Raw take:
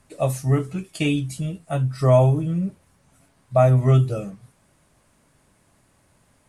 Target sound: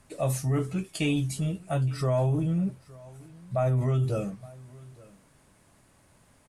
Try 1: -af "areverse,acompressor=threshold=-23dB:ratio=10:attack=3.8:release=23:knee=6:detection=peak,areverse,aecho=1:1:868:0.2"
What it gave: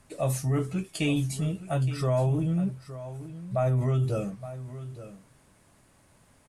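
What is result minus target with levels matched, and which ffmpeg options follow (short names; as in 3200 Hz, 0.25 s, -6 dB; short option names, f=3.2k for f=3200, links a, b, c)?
echo-to-direct +8.5 dB
-af "areverse,acompressor=threshold=-23dB:ratio=10:attack=3.8:release=23:knee=6:detection=peak,areverse,aecho=1:1:868:0.075"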